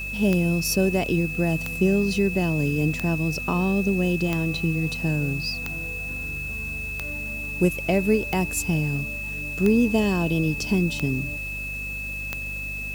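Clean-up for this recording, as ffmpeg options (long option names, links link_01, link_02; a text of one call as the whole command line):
ffmpeg -i in.wav -af "adeclick=threshold=4,bandreject=frequency=49.7:width_type=h:width=4,bandreject=frequency=99.4:width_type=h:width=4,bandreject=frequency=149.1:width_type=h:width=4,bandreject=frequency=198.8:width_type=h:width=4,bandreject=frequency=248.5:width_type=h:width=4,bandreject=frequency=2600:width=30,afwtdn=0.004" out.wav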